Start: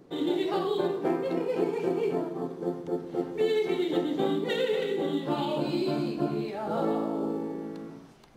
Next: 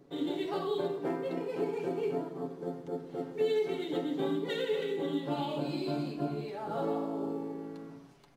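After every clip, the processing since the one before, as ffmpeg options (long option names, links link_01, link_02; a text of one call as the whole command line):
ffmpeg -i in.wav -af "aecho=1:1:7.1:0.5,volume=-6dB" out.wav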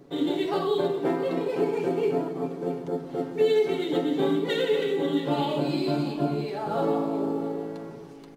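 ffmpeg -i in.wav -af "aecho=1:1:669:0.188,volume=7.5dB" out.wav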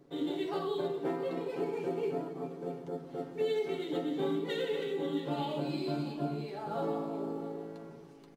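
ffmpeg -i in.wav -filter_complex "[0:a]asplit=2[link_01][link_02];[link_02]adelay=13,volume=-11.5dB[link_03];[link_01][link_03]amix=inputs=2:normalize=0,volume=-9dB" out.wav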